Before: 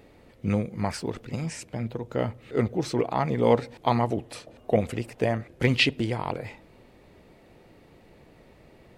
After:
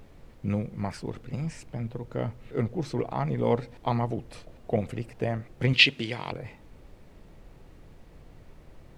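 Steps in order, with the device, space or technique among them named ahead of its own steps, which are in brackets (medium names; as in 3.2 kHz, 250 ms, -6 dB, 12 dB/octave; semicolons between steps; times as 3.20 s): car interior (peaking EQ 140 Hz +6 dB 0.77 oct; treble shelf 4.8 kHz -6 dB; brown noise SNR 17 dB); 5.73–6.32 s: frequency weighting D; trim -5 dB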